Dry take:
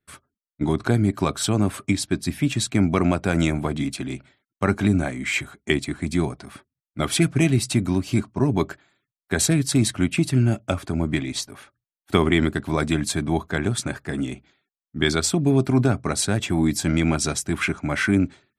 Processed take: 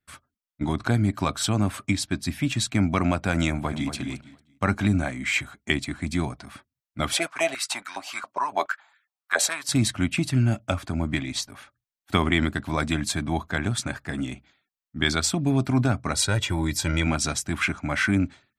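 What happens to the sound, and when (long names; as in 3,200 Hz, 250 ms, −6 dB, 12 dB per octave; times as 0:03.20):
0:03.49–0:03.93: delay throw 230 ms, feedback 25%, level −9.5 dB
0:07.13–0:09.69: high-pass on a step sequencer 7.2 Hz 560–1,600 Hz
0:16.14–0:17.07: comb filter 2.1 ms, depth 64%
whole clip: graphic EQ with 15 bands 160 Hz −4 dB, 400 Hz −9 dB, 10,000 Hz −4 dB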